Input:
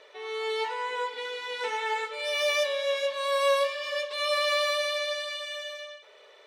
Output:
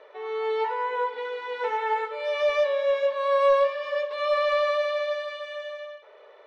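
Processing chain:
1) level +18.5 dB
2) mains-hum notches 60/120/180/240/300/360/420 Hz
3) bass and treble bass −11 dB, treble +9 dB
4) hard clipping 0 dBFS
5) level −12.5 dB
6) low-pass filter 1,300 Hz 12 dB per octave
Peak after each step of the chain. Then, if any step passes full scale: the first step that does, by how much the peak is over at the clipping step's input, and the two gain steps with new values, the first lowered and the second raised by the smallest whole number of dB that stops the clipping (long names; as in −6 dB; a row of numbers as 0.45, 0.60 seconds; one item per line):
+3.5, +3.5, +4.5, 0.0, −12.5, −13.0 dBFS
step 1, 4.5 dB
step 1 +13.5 dB, step 5 −7.5 dB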